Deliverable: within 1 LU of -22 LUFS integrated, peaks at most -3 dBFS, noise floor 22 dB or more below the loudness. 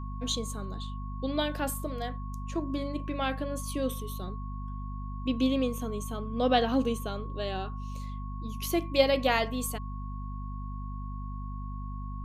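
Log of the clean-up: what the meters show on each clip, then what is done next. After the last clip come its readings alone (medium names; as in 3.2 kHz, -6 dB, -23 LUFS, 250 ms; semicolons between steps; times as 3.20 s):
hum 50 Hz; highest harmonic 250 Hz; hum level -34 dBFS; steady tone 1.1 kHz; tone level -45 dBFS; loudness -32.0 LUFS; peak level -10.0 dBFS; loudness target -22.0 LUFS
-> de-hum 50 Hz, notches 5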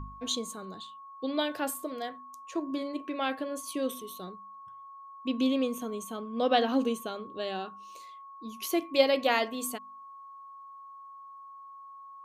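hum not found; steady tone 1.1 kHz; tone level -45 dBFS
-> band-stop 1.1 kHz, Q 30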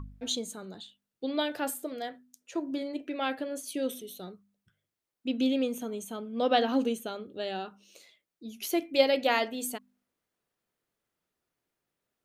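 steady tone not found; loudness -31.5 LUFS; peak level -10.5 dBFS; loudness target -22.0 LUFS
-> trim +9.5 dB; peak limiter -3 dBFS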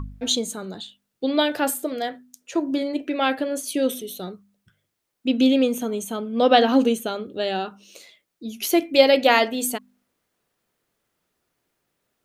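loudness -22.0 LUFS; peak level -3.0 dBFS; noise floor -78 dBFS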